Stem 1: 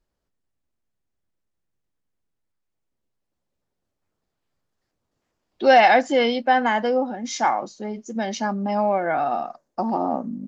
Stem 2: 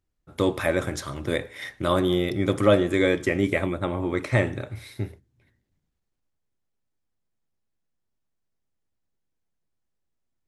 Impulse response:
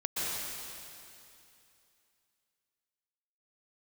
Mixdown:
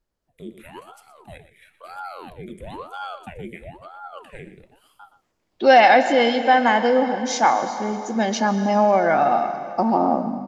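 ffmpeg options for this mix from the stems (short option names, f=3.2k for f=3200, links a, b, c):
-filter_complex "[0:a]volume=-2.5dB,asplit=2[a][b];[b]volume=-15dB[c];[1:a]aexciter=amount=11.1:drive=8.5:freq=8.1k,asplit=3[d][e][f];[d]bandpass=f=270:t=q:w=8,volume=0dB[g];[e]bandpass=f=2.29k:t=q:w=8,volume=-6dB[h];[f]bandpass=f=3.01k:t=q:w=8,volume=-9dB[i];[g][h][i]amix=inputs=3:normalize=0,aeval=exprs='val(0)*sin(2*PI*590*n/s+590*0.9/1*sin(2*PI*1*n/s))':c=same,volume=-7dB,asplit=2[j][k];[k]volume=-13dB[l];[2:a]atrim=start_sample=2205[m];[c][m]afir=irnorm=-1:irlink=0[n];[l]aecho=0:1:120:1[o];[a][j][n][o]amix=inputs=4:normalize=0,dynaudnorm=f=190:g=5:m=6dB"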